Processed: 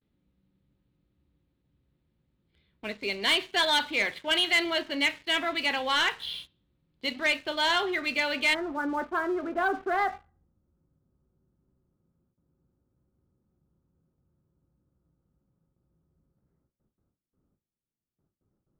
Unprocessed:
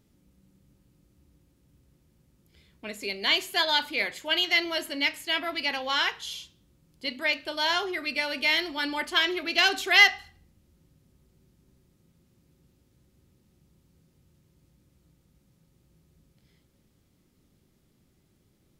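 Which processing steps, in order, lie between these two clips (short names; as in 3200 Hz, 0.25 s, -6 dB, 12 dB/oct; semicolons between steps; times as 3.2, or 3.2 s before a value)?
Chebyshev low-pass 4000 Hz, order 4, from 8.53 s 1400 Hz; gate with hold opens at -58 dBFS; sample leveller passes 2; gain -4.5 dB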